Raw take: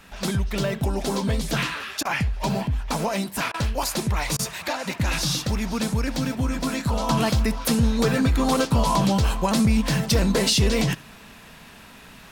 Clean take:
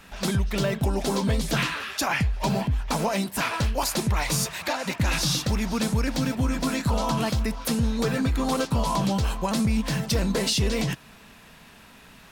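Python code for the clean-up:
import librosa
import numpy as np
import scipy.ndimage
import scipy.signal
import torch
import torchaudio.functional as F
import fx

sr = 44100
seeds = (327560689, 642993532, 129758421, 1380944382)

y = fx.fix_interpolate(x, sr, at_s=(2.03, 3.52, 4.37), length_ms=20.0)
y = fx.fix_echo_inverse(y, sr, delay_ms=70, level_db=-22.5)
y = fx.gain(y, sr, db=fx.steps((0.0, 0.0), (7.09, -4.0)))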